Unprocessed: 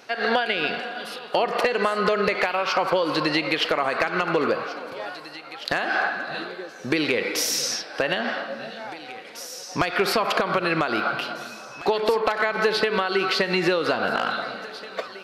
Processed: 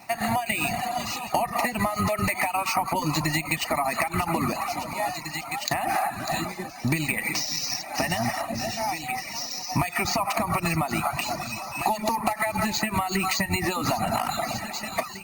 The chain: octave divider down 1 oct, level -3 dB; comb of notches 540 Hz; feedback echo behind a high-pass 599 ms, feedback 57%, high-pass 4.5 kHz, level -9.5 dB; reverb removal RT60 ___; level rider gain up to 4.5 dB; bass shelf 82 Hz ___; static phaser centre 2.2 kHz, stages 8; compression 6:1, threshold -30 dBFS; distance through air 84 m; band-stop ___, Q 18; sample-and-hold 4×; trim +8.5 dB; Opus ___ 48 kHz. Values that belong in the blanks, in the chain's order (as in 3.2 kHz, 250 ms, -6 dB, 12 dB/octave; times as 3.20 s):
0.68 s, -3.5 dB, 1.7 kHz, 32 kbps